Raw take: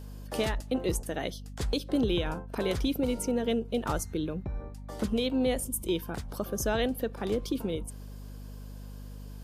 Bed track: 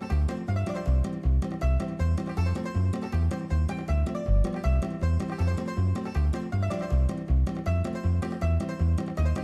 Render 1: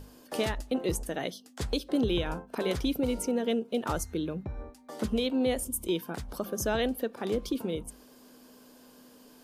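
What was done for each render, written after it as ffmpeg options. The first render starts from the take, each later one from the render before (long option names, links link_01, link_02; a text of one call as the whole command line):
ffmpeg -i in.wav -af "bandreject=frequency=50:width_type=h:width=6,bandreject=frequency=100:width_type=h:width=6,bandreject=frequency=150:width_type=h:width=6,bandreject=frequency=200:width_type=h:width=6" out.wav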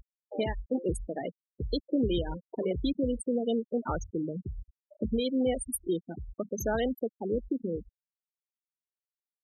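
ffmpeg -i in.wav -af "afftfilt=real='re*gte(hypot(re,im),0.0631)':imag='im*gte(hypot(re,im),0.0631)':win_size=1024:overlap=0.75,highshelf=frequency=8800:gain=6.5" out.wav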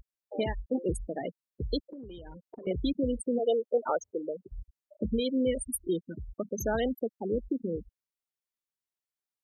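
ffmpeg -i in.wav -filter_complex "[0:a]asettb=1/sr,asplit=3[link_01][link_02][link_03];[link_01]atrim=end=1.794[link_04];[link_02]atrim=start=1.79:end=2.67,asetpts=PTS-STARTPTS,afade=type=in:duration=0.004:curve=qsin,afade=type=out:start_time=0.876:duration=0.004:curve=qsin,acompressor=threshold=-41dB:ratio=10:attack=3.2:release=140:knee=1:detection=peak[link_05];[link_03]atrim=start=2.666[link_06];[link_04][link_05]acrossfade=duration=0.004:curve1=hsin:curve2=qsin[link_07];[link_07][link_06]acrossfade=duration=0.004:curve1=qsin:curve2=hsin,asplit=3[link_08][link_09][link_10];[link_08]afade=type=out:start_time=3.38:duration=0.02[link_11];[link_09]highpass=frequency=530:width_type=q:width=2.4,afade=type=in:start_time=3.38:duration=0.02,afade=type=out:start_time=4.51:duration=0.02[link_12];[link_10]afade=type=in:start_time=4.51:duration=0.02[link_13];[link_11][link_12][link_13]amix=inputs=3:normalize=0,asettb=1/sr,asplit=3[link_14][link_15][link_16];[link_14]atrim=end=5.054[link_17];[link_15]atrim=start=5.05:end=6.2,asetpts=PTS-STARTPTS,afade=type=in:duration=0.004:curve=qsin,afade=type=out:start_time=1.146:duration=0.004:curve=qsin,asuperstop=centerf=770:order=20:qfactor=2.5[link_18];[link_16]atrim=start=6.196[link_19];[link_17][link_18]acrossfade=duration=0.004:curve1=hsin:curve2=qsin[link_20];[link_20][link_19]acrossfade=duration=0.004:curve1=qsin:curve2=hsin" out.wav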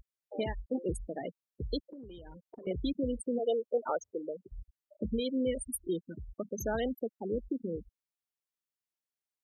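ffmpeg -i in.wav -af "volume=-3.5dB" out.wav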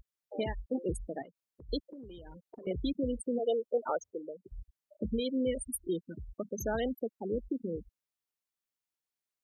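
ffmpeg -i in.wav -filter_complex "[0:a]asettb=1/sr,asplit=3[link_01][link_02][link_03];[link_01]atrim=end=1.224[link_04];[link_02]atrim=start=1.22:end=1.69,asetpts=PTS-STARTPTS,afade=type=in:duration=0.004:curve=qsin,afade=type=out:start_time=0.466:duration=0.004:curve=qsin,acompressor=threshold=-49dB:ratio=12:attack=3.2:release=140:knee=1:detection=peak[link_05];[link_03]atrim=start=1.686[link_06];[link_04][link_05]acrossfade=duration=0.004:curve1=hsin:curve2=qsin[link_07];[link_07][link_06]acrossfade=duration=0.004:curve1=qsin:curve2=hsin,asplit=2[link_08][link_09];[link_08]atrim=end=4.44,asetpts=PTS-STARTPTS,afade=type=out:start_time=3.96:duration=0.48:silence=0.446684[link_10];[link_09]atrim=start=4.44,asetpts=PTS-STARTPTS,afade=type=in:duration=0.004:curve=hsin:silence=0.446684[link_11];[link_10][link_11]concat=n=2:v=0:a=1" out.wav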